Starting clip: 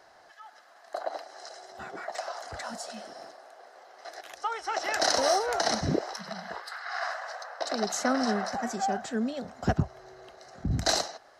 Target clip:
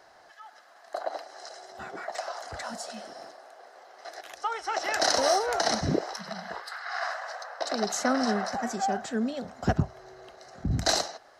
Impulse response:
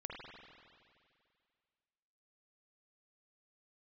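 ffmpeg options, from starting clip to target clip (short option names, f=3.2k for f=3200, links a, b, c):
-filter_complex "[0:a]asplit=2[a][b];[1:a]atrim=start_sample=2205,atrim=end_sample=3528[c];[b][c]afir=irnorm=-1:irlink=0,volume=-13.5dB[d];[a][d]amix=inputs=2:normalize=0"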